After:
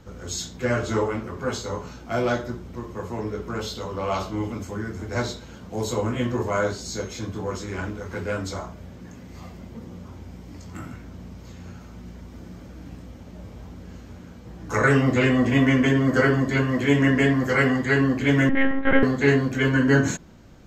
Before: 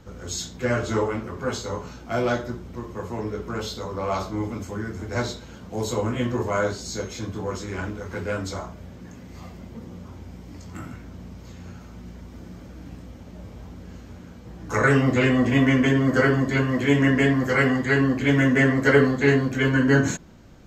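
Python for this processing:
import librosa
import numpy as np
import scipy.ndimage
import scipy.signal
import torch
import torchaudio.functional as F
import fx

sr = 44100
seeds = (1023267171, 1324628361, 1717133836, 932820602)

y = fx.peak_eq(x, sr, hz=2900.0, db=9.0, octaves=0.29, at=(3.75, 4.52))
y = fx.lpc_monotone(y, sr, seeds[0], pitch_hz=270.0, order=8, at=(18.49, 19.03))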